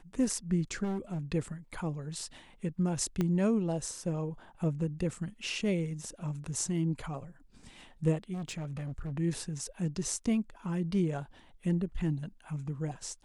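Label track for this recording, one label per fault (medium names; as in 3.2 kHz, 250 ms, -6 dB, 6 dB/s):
0.830000	1.190000	clipped -30.5 dBFS
3.210000	3.210000	pop -18 dBFS
8.330000	9.120000	clipped -34 dBFS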